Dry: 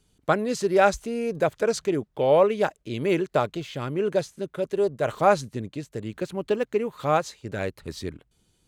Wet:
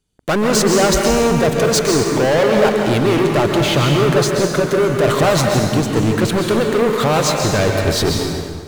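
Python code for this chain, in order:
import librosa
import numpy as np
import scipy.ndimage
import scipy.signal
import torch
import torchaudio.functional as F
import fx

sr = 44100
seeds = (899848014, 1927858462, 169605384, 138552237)

p1 = fx.over_compress(x, sr, threshold_db=-29.0, ratio=-1.0)
p2 = x + (p1 * librosa.db_to_amplitude(2.0))
p3 = fx.leveller(p2, sr, passes=5)
p4 = fx.rev_plate(p3, sr, seeds[0], rt60_s=1.8, hf_ratio=0.75, predelay_ms=115, drr_db=1.0)
y = p4 * librosa.db_to_amplitude(-7.0)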